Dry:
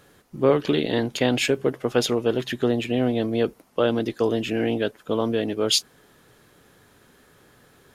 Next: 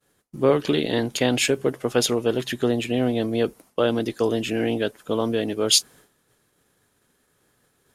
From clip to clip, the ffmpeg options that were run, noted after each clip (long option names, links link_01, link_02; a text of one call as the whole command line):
ffmpeg -i in.wav -af "agate=range=-33dB:threshold=-46dB:ratio=3:detection=peak,equalizer=frequency=9500:width_type=o:width=1.3:gain=8" out.wav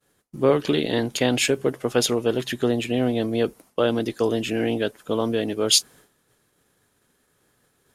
ffmpeg -i in.wav -af anull out.wav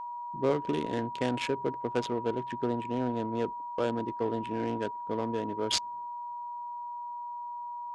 ffmpeg -i in.wav -af "adynamicsmooth=sensitivity=1.5:basefreq=650,aeval=exprs='val(0)+0.0447*sin(2*PI*960*n/s)':channel_layout=same,lowpass=frequency=9400:width=0.5412,lowpass=frequency=9400:width=1.3066,volume=-9dB" out.wav